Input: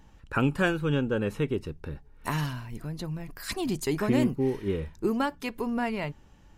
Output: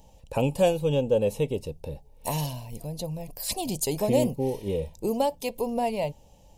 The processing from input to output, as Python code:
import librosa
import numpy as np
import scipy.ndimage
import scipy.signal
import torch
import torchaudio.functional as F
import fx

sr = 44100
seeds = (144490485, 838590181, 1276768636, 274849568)

y = fx.curve_eq(x, sr, hz=(170.0, 370.0, 520.0, 910.0, 1400.0, 2600.0, 11000.0), db=(0, -5, 11, 3, -22, 0, 11))